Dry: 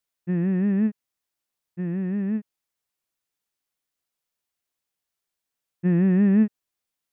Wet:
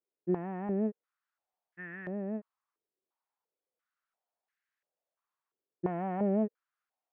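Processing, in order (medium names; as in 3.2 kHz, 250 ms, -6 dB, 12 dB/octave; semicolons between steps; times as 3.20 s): in parallel at -5 dB: sine folder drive 6 dB, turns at -11 dBFS; on the sum: step-sequenced band-pass 2.9 Hz 390–1700 Hz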